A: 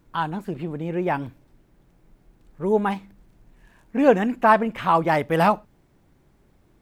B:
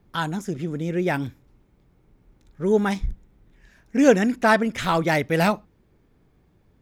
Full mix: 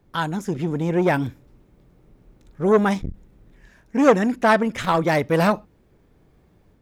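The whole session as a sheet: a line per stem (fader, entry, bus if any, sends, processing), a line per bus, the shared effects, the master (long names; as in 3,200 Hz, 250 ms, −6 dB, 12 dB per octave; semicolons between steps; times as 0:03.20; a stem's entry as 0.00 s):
−10.5 dB, 0.00 s, no send, no processing
−1.0 dB, 0.00 s, no send, parametric band 560 Hz +3.5 dB 0.77 octaves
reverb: not used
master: automatic gain control gain up to 4 dB; saturating transformer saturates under 840 Hz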